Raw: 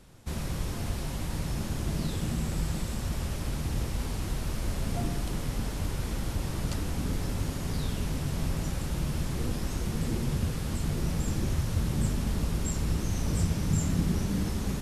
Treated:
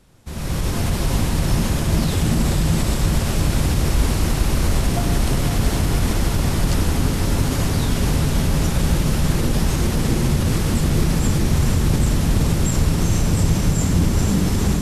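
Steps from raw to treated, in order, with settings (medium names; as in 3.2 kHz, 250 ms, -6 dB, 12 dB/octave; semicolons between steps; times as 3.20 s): level rider gain up to 13.5 dB; peak limiter -11.5 dBFS, peak gain reduction 9 dB; on a send: echo that smears into a reverb 458 ms, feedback 73%, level -5.5 dB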